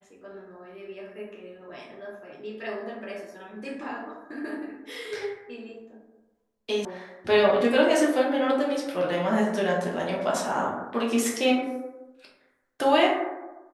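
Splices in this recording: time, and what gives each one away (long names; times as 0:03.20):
0:06.85: cut off before it has died away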